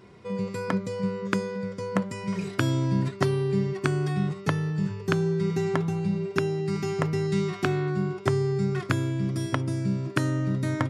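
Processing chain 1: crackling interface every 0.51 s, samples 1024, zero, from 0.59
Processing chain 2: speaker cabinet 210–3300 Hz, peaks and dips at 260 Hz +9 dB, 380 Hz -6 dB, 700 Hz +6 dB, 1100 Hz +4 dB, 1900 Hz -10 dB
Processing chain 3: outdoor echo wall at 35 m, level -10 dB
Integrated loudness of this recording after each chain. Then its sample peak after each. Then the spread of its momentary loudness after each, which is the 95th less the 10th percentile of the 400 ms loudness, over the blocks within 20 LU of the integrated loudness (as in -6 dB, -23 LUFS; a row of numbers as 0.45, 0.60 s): -27.5, -30.0, -27.0 LUFS; -6.0, -7.0, -6.0 dBFS; 4, 5, 5 LU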